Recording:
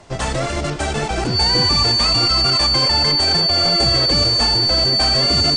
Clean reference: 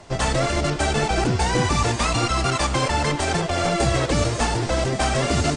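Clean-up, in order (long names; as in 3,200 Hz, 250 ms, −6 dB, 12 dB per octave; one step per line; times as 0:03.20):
notch filter 4,500 Hz, Q 30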